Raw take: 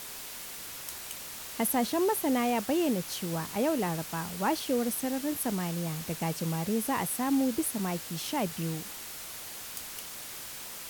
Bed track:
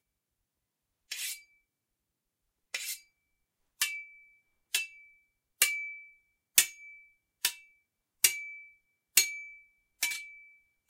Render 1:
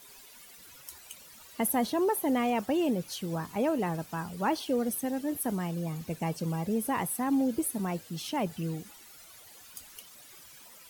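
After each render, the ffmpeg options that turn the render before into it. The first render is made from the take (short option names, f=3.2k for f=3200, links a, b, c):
-af "afftdn=nr=14:nf=-42"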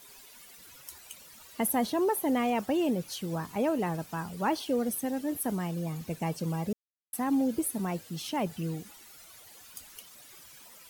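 -filter_complex "[0:a]asplit=3[a][b][c];[a]atrim=end=6.73,asetpts=PTS-STARTPTS,afade=t=out:st=6.726:d=0.004:c=hsin[d];[b]atrim=start=6.73:end=7.13,asetpts=PTS-STARTPTS,volume=0[e];[c]atrim=start=7.13,asetpts=PTS-STARTPTS,afade=t=in:d=0.004:c=hsin[f];[d][e][f]concat=n=3:v=0:a=1"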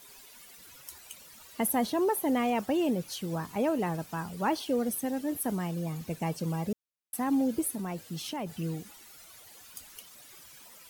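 -filter_complex "[0:a]asettb=1/sr,asplit=3[a][b][c];[a]atrim=end=7.724[d];[b]atrim=start=7.72:end=8.57,asetpts=PTS-STARTPTS,afade=t=in:d=0.004:c=qsin,afade=t=out:st=0.846:d=0.004:c=qsin,acompressor=threshold=-31dB:ratio=6:attack=3.2:release=140:knee=1:detection=peak[e];[c]atrim=start=8.566[f];[d][e]acrossfade=d=0.004:c1=hsin:c2=qsin[g];[g][f]acrossfade=d=0.004:c1=qsin:c2=hsin"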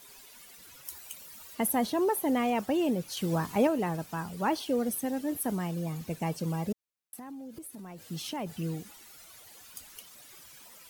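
-filter_complex "[0:a]asettb=1/sr,asplit=3[a][b][c];[a]atrim=end=0.854[d];[b]atrim=start=0.85:end=1.55,asetpts=PTS-STARTPTS,afade=t=in:d=0.004:c=qsin,afade=t=out:st=0.696:d=0.004:c=qsin,highshelf=f=12k:g=8[e];[c]atrim=start=1.546[f];[d][e]acrossfade=d=0.004:c1=hsin:c2=qsin[g];[g][f]acrossfade=d=0.004:c1=qsin:c2=hsin,asettb=1/sr,asplit=3[h][i][j];[h]atrim=end=6.724[k];[i]atrim=start=6.72:end=8.11,asetpts=PTS-STARTPTS,afade=t=in:d=0.004:c=qsin,afade=t=out:st=1.386:d=0.004:c=qsin,acompressor=threshold=-41dB:ratio=8:attack=3.2:release=140:knee=1:detection=peak[l];[j]atrim=start=8.106[m];[k][l]acrossfade=d=0.004:c1=hsin:c2=qsin[n];[n][m]acrossfade=d=0.004:c1=qsin:c2=hsin,asplit=3[o][p][q];[o]atrim=end=3.172[r];[p]atrim=start=3.168:end=3.672,asetpts=PTS-STARTPTS,volume=4.5dB[s];[q]atrim=start=3.668[t];[r][s]acrossfade=d=0.004:c1=hsin:c2=hsin[u];[u][t]acrossfade=d=0.004:c1=hsin:c2=hsin"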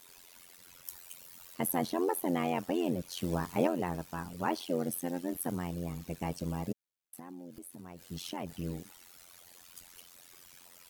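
-af "tremolo=f=88:d=0.919"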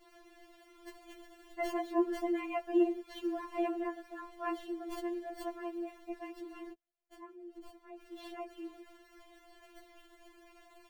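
-filter_complex "[0:a]acrossover=split=310|1700|3100[a][b][c][d];[d]acrusher=samples=35:mix=1:aa=0.000001[e];[a][b][c][e]amix=inputs=4:normalize=0,afftfilt=real='re*4*eq(mod(b,16),0)':imag='im*4*eq(mod(b,16),0)':win_size=2048:overlap=0.75"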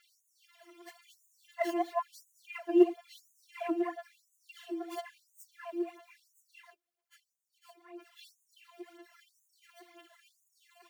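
-af "aphaser=in_gain=1:out_gain=1:delay=3.3:decay=0.64:speed=2:type=sinusoidal,afftfilt=real='re*gte(b*sr/1024,210*pow(6200/210,0.5+0.5*sin(2*PI*0.98*pts/sr)))':imag='im*gte(b*sr/1024,210*pow(6200/210,0.5+0.5*sin(2*PI*0.98*pts/sr)))':win_size=1024:overlap=0.75"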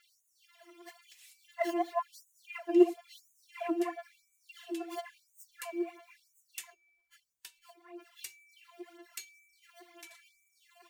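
-filter_complex "[1:a]volume=-21dB[a];[0:a][a]amix=inputs=2:normalize=0"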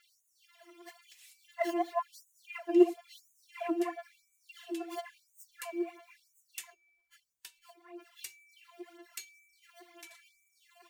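-af anull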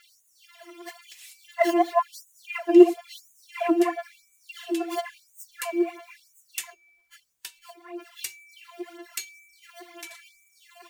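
-af "volume=10.5dB,alimiter=limit=-3dB:level=0:latency=1"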